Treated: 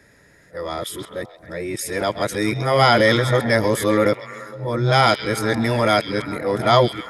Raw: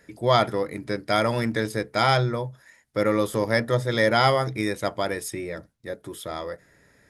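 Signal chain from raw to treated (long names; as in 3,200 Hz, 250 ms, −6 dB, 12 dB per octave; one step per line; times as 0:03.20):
played backwards from end to start
transient designer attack −2 dB, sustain +5 dB
echo through a band-pass that steps 133 ms, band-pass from 3,500 Hz, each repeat −0.7 octaves, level −7.5 dB
level +5 dB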